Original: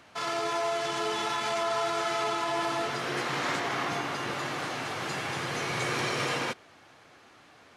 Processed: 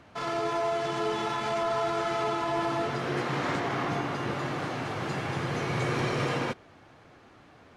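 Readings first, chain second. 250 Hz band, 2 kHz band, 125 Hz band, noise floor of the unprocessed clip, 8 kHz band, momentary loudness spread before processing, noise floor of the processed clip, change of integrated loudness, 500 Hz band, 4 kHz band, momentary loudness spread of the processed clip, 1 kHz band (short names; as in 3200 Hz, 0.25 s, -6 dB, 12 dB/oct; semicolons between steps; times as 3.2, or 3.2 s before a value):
+4.5 dB, -2.5 dB, +7.0 dB, -56 dBFS, -7.0 dB, 4 LU, -55 dBFS, +0.5 dB, +2.0 dB, -4.5 dB, 4 LU, 0.0 dB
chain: tilt -2.5 dB/oct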